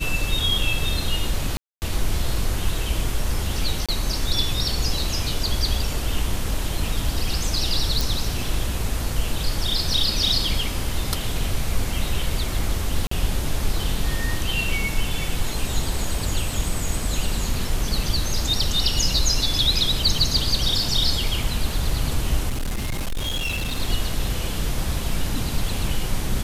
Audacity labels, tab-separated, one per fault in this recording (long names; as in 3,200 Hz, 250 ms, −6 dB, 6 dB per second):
1.570000	1.820000	drop-out 249 ms
3.860000	3.890000	drop-out 26 ms
8.010000	8.010000	click
13.070000	13.110000	drop-out 44 ms
22.490000	23.800000	clipping −21.5 dBFS